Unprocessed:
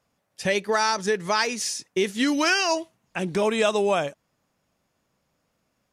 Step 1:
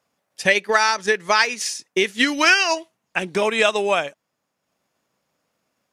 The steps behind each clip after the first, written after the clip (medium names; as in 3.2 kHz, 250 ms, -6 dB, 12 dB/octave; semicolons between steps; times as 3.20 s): high-pass 270 Hz 6 dB/octave; dynamic bell 2.2 kHz, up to +7 dB, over -37 dBFS, Q 0.89; transient shaper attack +4 dB, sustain -4 dB; trim +1.5 dB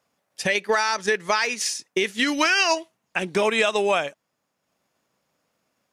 peak limiter -10 dBFS, peak gain reduction 8.5 dB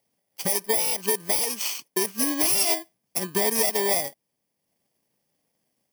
bit-reversed sample order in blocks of 32 samples; trim -2 dB